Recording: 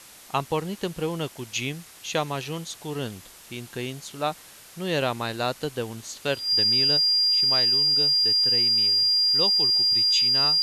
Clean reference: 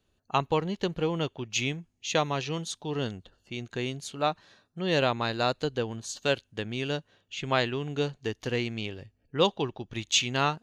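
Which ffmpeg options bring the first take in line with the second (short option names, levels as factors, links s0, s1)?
-af "adeclick=t=4,bandreject=f=4800:w=30,afwtdn=0.005,asetnsamples=n=441:p=0,asendcmd='6.97 volume volume 6dB',volume=1"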